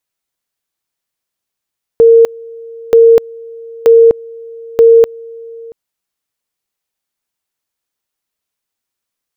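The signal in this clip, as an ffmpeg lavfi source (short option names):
-f lavfi -i "aevalsrc='pow(10,(-1.5-25*gte(mod(t,0.93),0.25))/20)*sin(2*PI*459*t)':d=3.72:s=44100"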